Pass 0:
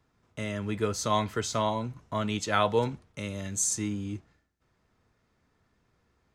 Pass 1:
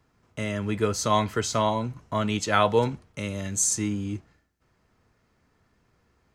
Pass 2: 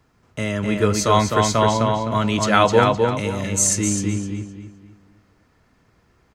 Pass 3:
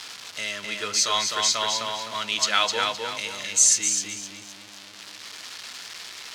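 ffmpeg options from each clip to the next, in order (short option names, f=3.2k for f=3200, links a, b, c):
-af "bandreject=f=3.6k:w=18,volume=4dB"
-filter_complex "[0:a]asplit=2[a][b];[b]adelay=257,lowpass=f=4.8k:p=1,volume=-3dB,asplit=2[c][d];[d]adelay=257,lowpass=f=4.8k:p=1,volume=0.35,asplit=2[e][f];[f]adelay=257,lowpass=f=4.8k:p=1,volume=0.35,asplit=2[g][h];[h]adelay=257,lowpass=f=4.8k:p=1,volume=0.35,asplit=2[i][j];[j]adelay=257,lowpass=f=4.8k:p=1,volume=0.35[k];[a][c][e][g][i][k]amix=inputs=6:normalize=0,volume=5.5dB"
-af "aeval=exprs='val(0)+0.5*0.0376*sgn(val(0))':c=same,bandpass=f=4.4k:t=q:w=1.3:csg=0,volume=5dB"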